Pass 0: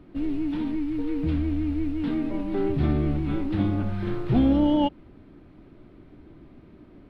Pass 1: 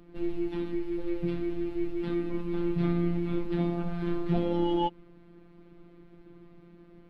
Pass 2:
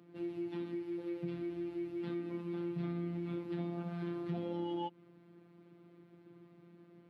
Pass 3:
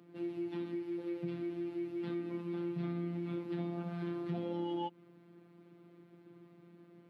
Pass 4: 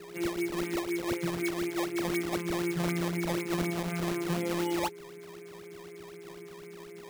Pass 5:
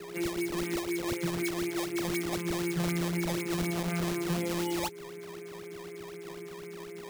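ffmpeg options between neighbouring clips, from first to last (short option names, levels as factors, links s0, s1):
-af "afftfilt=real='hypot(re,im)*cos(PI*b)':imag='0':win_size=1024:overlap=0.75"
-af "highpass=f=99:w=0.5412,highpass=f=99:w=1.3066,acompressor=threshold=0.0282:ratio=3,volume=0.531"
-af "highpass=110,volume=1.12"
-af "aeval=exprs='val(0)+0.00282*sin(2*PI*410*n/s)':c=same,lowpass=f=2200:t=q:w=12,acrusher=samples=18:mix=1:aa=0.000001:lfo=1:lforange=28.8:lforate=4,volume=2"
-filter_complex "[0:a]acrossover=split=170|3000[s0][s1][s2];[s1]acompressor=threshold=0.0224:ratio=6[s3];[s0][s3][s2]amix=inputs=3:normalize=0,asplit=2[s4][s5];[s5]asoftclip=type=hard:threshold=0.0266,volume=0.447[s6];[s4][s6]amix=inputs=2:normalize=0"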